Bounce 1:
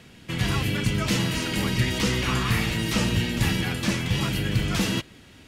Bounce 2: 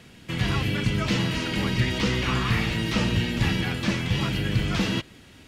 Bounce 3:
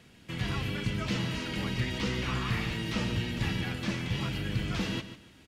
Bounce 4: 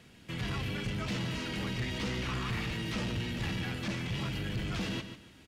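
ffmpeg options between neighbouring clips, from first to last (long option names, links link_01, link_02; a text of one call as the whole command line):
ffmpeg -i in.wav -filter_complex "[0:a]acrossover=split=5400[link_01][link_02];[link_02]acompressor=threshold=-49dB:ratio=4:attack=1:release=60[link_03];[link_01][link_03]amix=inputs=2:normalize=0" out.wav
ffmpeg -i in.wav -af "aecho=1:1:144|288|432:0.251|0.0653|0.017,volume=-7.5dB" out.wav
ffmpeg -i in.wav -af "asoftclip=type=tanh:threshold=-29dB" out.wav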